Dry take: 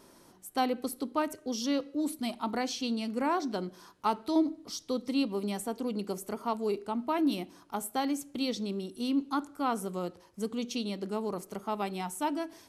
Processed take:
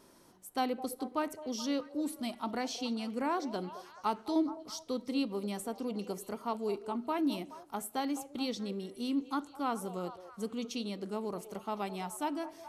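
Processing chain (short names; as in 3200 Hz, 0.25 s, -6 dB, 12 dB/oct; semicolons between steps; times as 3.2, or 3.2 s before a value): delay with a stepping band-pass 0.212 s, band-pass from 580 Hz, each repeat 0.7 oct, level -10.5 dB; gain -3.5 dB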